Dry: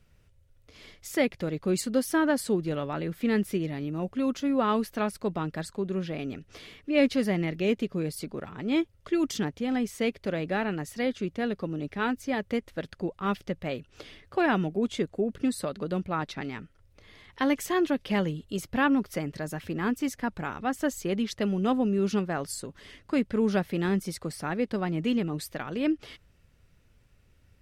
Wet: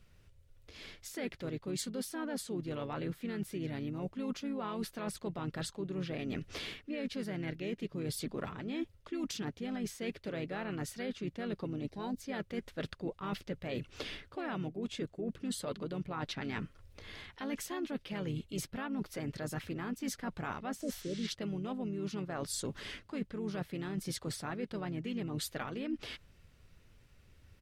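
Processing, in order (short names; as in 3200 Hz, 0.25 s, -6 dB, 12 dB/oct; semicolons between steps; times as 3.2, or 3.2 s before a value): vocal rider within 3 dB 0.5 s; spectral repair 20.84–21.24, 680–10000 Hz both; bell 3900 Hz +3 dB 1.1 oct; spectral gain 11.89–12.17, 1100–3700 Hz -16 dB; limiter -19.5 dBFS, peak gain reduction 8 dB; reverse; compressor 16:1, threshold -35 dBFS, peak gain reduction 13 dB; reverse; harmoniser -4 st -7 dB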